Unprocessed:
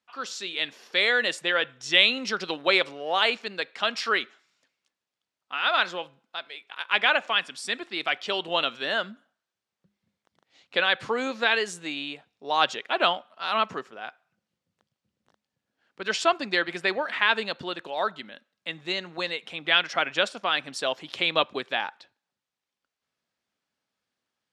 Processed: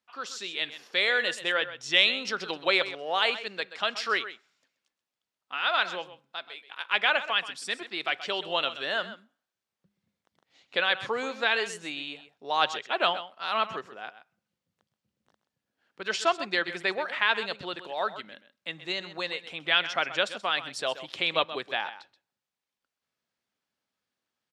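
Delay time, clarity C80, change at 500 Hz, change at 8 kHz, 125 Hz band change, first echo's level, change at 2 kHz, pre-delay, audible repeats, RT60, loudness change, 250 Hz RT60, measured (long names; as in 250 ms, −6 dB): 129 ms, no reverb audible, −2.5 dB, −2.5 dB, −3.5 dB, −13.5 dB, −2.5 dB, no reverb audible, 1, no reverb audible, −2.5 dB, no reverb audible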